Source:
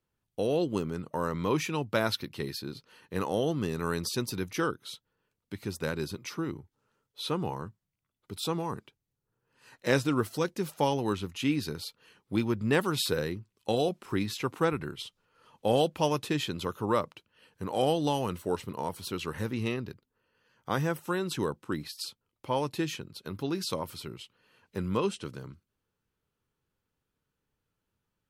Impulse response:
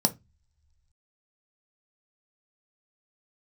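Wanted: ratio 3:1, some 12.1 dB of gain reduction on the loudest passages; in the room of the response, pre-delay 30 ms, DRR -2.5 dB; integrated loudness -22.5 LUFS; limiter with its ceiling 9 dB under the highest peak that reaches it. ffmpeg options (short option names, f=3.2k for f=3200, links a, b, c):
-filter_complex "[0:a]acompressor=threshold=-38dB:ratio=3,alimiter=level_in=7dB:limit=-24dB:level=0:latency=1,volume=-7dB,asplit=2[a][b];[1:a]atrim=start_sample=2205,adelay=30[c];[b][c]afir=irnorm=-1:irlink=0,volume=-7dB[d];[a][d]amix=inputs=2:normalize=0,volume=11.5dB"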